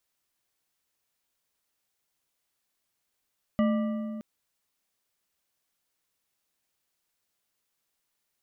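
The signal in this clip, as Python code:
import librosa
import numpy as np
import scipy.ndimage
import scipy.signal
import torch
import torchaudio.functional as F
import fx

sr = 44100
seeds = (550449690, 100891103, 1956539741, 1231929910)

y = fx.strike_metal(sr, length_s=0.62, level_db=-20.5, body='bar', hz=219.0, decay_s=2.56, tilt_db=6.5, modes=5)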